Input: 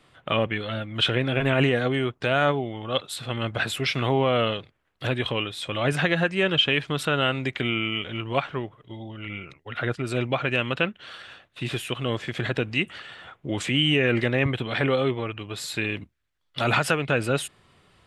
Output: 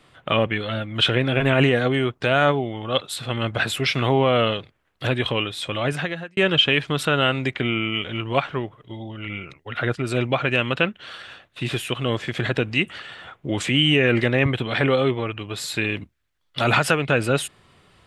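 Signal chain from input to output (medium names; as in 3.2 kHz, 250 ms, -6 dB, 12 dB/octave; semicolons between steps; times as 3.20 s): 5.64–6.37 s: fade out; 7.53–7.94 s: treble shelf 4.2 kHz -9 dB; trim +3.5 dB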